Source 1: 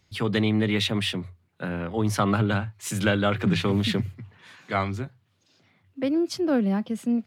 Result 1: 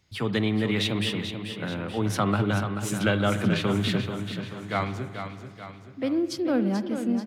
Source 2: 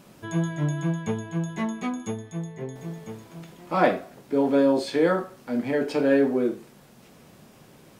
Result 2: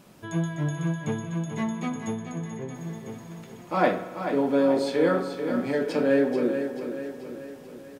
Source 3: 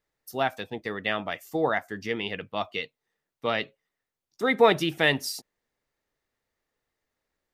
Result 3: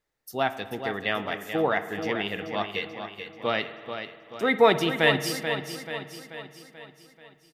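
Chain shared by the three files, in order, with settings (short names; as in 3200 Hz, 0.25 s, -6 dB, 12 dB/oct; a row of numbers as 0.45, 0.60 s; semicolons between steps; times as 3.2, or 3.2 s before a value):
feedback echo 0.435 s, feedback 52%, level -8.5 dB; spring tank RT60 1.8 s, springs 49 ms, chirp 25 ms, DRR 12.5 dB; match loudness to -27 LUFS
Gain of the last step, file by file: -2.0, -2.0, +0.5 dB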